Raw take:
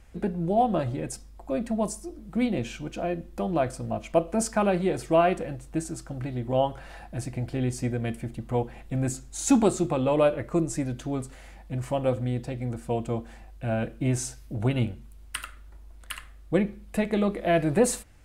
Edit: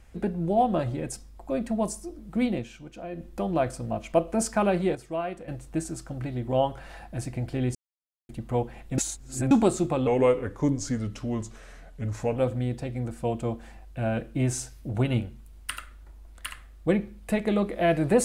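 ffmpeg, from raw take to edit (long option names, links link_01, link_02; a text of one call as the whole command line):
ffmpeg -i in.wav -filter_complex "[0:a]asplit=11[link_01][link_02][link_03][link_04][link_05][link_06][link_07][link_08][link_09][link_10][link_11];[link_01]atrim=end=2.66,asetpts=PTS-STARTPTS,afade=type=out:start_time=2.53:duration=0.13:silence=0.375837[link_12];[link_02]atrim=start=2.66:end=3.11,asetpts=PTS-STARTPTS,volume=-8.5dB[link_13];[link_03]atrim=start=3.11:end=4.952,asetpts=PTS-STARTPTS,afade=type=in:duration=0.13:silence=0.375837[link_14];[link_04]atrim=start=4.948:end=5.482,asetpts=PTS-STARTPTS,volume=-10dB[link_15];[link_05]atrim=start=5.478:end=7.75,asetpts=PTS-STARTPTS,afade=type=out:start_time=2.268:duration=0.004:curve=hsin[link_16];[link_06]atrim=start=7.75:end=8.29,asetpts=PTS-STARTPTS,volume=0[link_17];[link_07]atrim=start=8.29:end=8.982,asetpts=PTS-STARTPTS,afade=type=in:duration=0.004:curve=hsin[link_18];[link_08]atrim=start=8.978:end=9.512,asetpts=PTS-STARTPTS,areverse[link_19];[link_09]atrim=start=9.508:end=10.074[link_20];[link_10]atrim=start=10.07:end=12.02,asetpts=PTS-STARTPTS,asetrate=37485,aresample=44100[link_21];[link_11]atrim=start=12.016[link_22];[link_12][link_13][link_14]concat=n=3:v=0:a=1[link_23];[link_23][link_15]acrossfade=duration=0.004:curve1=hsin:curve2=hsin[link_24];[link_16][link_17][link_18]concat=n=3:v=0:a=1[link_25];[link_24][link_25]acrossfade=duration=0.004:curve1=hsin:curve2=hsin[link_26];[link_26][link_19]acrossfade=duration=0.004:curve1=hsin:curve2=hsin[link_27];[link_27][link_20]acrossfade=duration=0.004:curve1=hsin:curve2=hsin[link_28];[link_28][link_21]acrossfade=duration=0.004:curve1=hsin:curve2=hsin[link_29];[link_29][link_22]acrossfade=duration=0.004:curve1=hsin:curve2=hsin" out.wav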